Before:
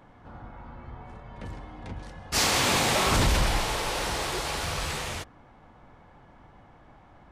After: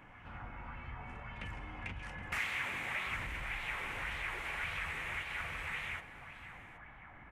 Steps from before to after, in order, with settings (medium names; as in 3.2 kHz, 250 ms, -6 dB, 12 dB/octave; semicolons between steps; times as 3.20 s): resonant high shelf 3.2 kHz -7.5 dB, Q 3, from 2.15 s -14 dB; feedback delay 771 ms, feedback 17%, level -9.5 dB; compression 20:1, threshold -36 dBFS, peak gain reduction 18.5 dB; amplifier tone stack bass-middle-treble 5-5-5; sweeping bell 1.8 Hz 280–4000 Hz +6 dB; trim +11 dB